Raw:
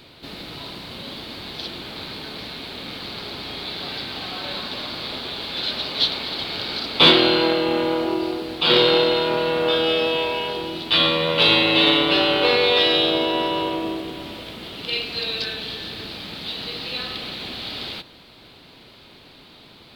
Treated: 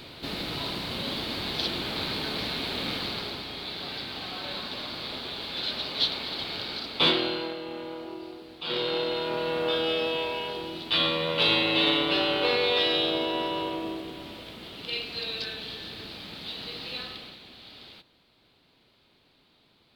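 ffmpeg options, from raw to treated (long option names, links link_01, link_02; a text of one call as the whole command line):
ffmpeg -i in.wav -af "volume=11.5dB,afade=type=out:start_time=2.89:duration=0.58:silence=0.398107,afade=type=out:start_time=6.5:duration=1.06:silence=0.298538,afade=type=in:start_time=8.63:duration=0.91:silence=0.354813,afade=type=out:start_time=16.96:duration=0.45:silence=0.334965" out.wav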